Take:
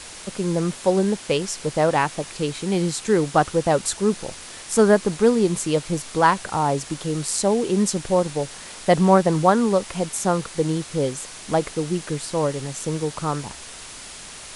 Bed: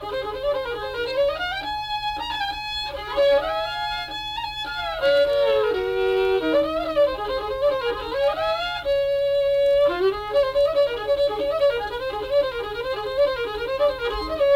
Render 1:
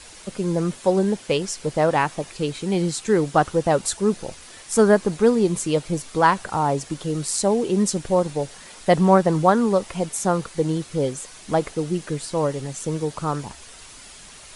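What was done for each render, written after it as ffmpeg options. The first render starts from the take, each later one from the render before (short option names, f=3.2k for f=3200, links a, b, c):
-af "afftdn=nr=7:nf=-39"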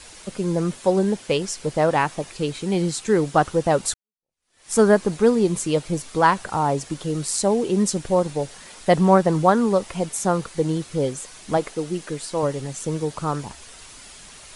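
-filter_complex "[0:a]asettb=1/sr,asplit=3[a][b][c];[a]atrim=end=11.574[d];[b]atrim=start=11.57:end=12.43,asetpts=PTS-STARTPTS,afade=t=in:d=0.004:c=qsin,afade=t=out:st=0.856:d=0.004:c=qsin,equalizer=f=66:w=0.68:g=-13.5[e];[c]atrim=start=12.426[f];[d][e]acrossfade=d=0.004:c1=hsin:c2=qsin[g];[g][f]acrossfade=d=0.004:c1=qsin:c2=hsin,asplit=2[h][i];[h]atrim=end=3.94,asetpts=PTS-STARTPTS,afade=t=out:st=3.936:d=0.004:c=hsin[j];[i]atrim=start=3.94,asetpts=PTS-STARTPTS,afade=t=in:d=0.77:c=exp[k];[j][k]concat=n=2:v=0:a=1"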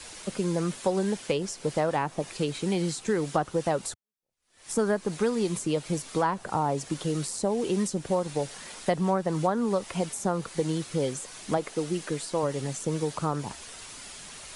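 -filter_complex "[0:a]acrossover=split=91|1000[a][b][c];[a]acompressor=threshold=-57dB:ratio=4[d];[b]acompressor=threshold=-25dB:ratio=4[e];[c]acompressor=threshold=-35dB:ratio=4[f];[d][e][f]amix=inputs=3:normalize=0"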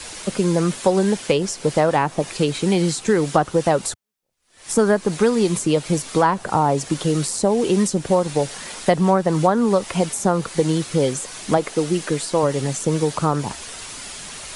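-af "volume=9dB"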